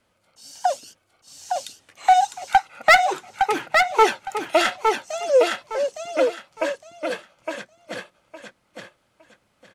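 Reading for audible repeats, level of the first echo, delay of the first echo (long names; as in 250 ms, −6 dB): 3, −4.5 dB, 861 ms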